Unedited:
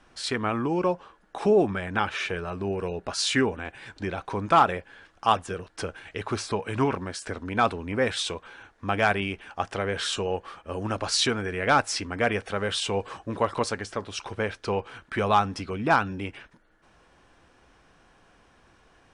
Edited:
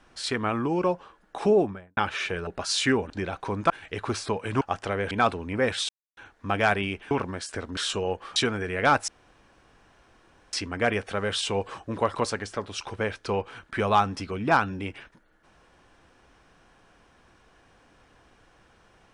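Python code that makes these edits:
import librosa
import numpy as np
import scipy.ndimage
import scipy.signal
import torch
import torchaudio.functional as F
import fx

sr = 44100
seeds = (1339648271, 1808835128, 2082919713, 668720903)

y = fx.studio_fade_out(x, sr, start_s=1.48, length_s=0.49)
y = fx.edit(y, sr, fx.cut(start_s=2.47, length_s=0.49),
    fx.cut(start_s=3.59, length_s=0.36),
    fx.cut(start_s=4.55, length_s=1.38),
    fx.swap(start_s=6.84, length_s=0.66, other_s=9.5, other_length_s=0.5),
    fx.silence(start_s=8.28, length_s=0.28),
    fx.cut(start_s=10.59, length_s=0.61),
    fx.insert_room_tone(at_s=11.92, length_s=1.45), tone=tone)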